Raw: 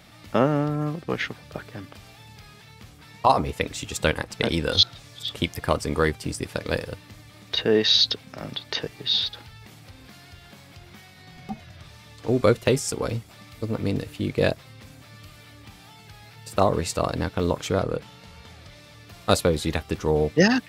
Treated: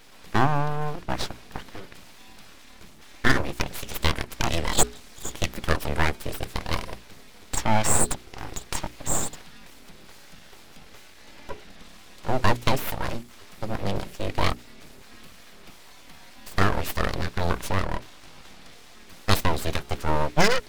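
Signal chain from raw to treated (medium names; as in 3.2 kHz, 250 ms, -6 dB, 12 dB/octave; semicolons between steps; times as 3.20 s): full-wave rectifier; hum notches 60/120/180/240/300/360/420 Hz; trim +1.5 dB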